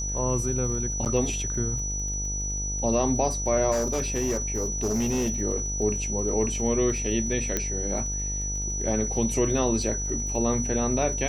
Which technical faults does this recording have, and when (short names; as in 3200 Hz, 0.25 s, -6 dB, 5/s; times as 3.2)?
buzz 50 Hz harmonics 19 -32 dBFS
crackle 30/s -36 dBFS
tone 5900 Hz -30 dBFS
1.05–1.06 gap 8.6 ms
3.71–5.3 clipped -21.5 dBFS
7.57 pop -10 dBFS